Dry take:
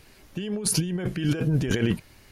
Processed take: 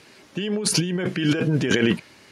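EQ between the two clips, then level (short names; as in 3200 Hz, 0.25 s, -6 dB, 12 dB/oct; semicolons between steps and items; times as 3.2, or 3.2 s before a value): notch 740 Hz, Q 22; dynamic EQ 2200 Hz, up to +3 dB, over -45 dBFS, Q 0.83; BPF 190–7700 Hz; +6.0 dB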